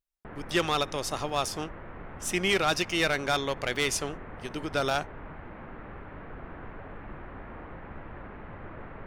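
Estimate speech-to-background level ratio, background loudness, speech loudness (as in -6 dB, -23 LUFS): 15.5 dB, -44.0 LUFS, -28.5 LUFS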